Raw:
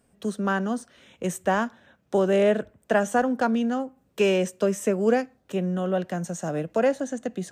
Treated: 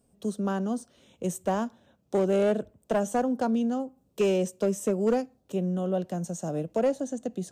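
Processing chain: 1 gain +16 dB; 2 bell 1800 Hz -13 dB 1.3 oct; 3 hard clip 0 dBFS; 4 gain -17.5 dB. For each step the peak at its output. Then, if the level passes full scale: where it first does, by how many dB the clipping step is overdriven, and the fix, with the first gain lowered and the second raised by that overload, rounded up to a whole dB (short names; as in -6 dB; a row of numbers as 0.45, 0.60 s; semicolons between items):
+7.0, +5.5, 0.0, -17.5 dBFS; step 1, 5.5 dB; step 1 +10 dB, step 4 -11.5 dB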